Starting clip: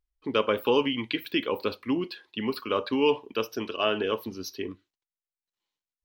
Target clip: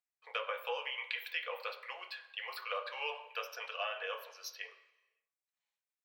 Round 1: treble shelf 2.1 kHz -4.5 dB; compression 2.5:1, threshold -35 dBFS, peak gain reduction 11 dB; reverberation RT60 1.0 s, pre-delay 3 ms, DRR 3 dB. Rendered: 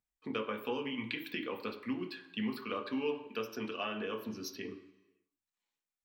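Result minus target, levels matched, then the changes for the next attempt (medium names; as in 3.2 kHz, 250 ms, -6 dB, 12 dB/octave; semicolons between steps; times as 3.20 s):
500 Hz band +3.0 dB
add first: rippled Chebyshev high-pass 490 Hz, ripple 3 dB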